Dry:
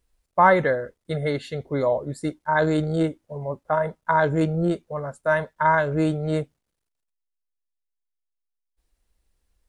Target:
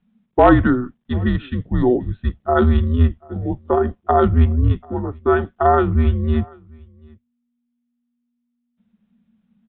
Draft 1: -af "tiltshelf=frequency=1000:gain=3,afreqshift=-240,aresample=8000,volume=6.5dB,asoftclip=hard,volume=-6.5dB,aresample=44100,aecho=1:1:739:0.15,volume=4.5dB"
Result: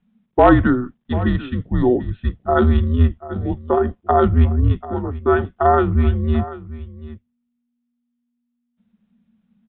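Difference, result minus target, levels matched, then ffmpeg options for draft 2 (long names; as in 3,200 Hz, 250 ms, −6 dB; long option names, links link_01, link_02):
echo-to-direct +10.5 dB
-af "tiltshelf=frequency=1000:gain=3,afreqshift=-240,aresample=8000,volume=6.5dB,asoftclip=hard,volume=-6.5dB,aresample=44100,aecho=1:1:739:0.0447,volume=4.5dB"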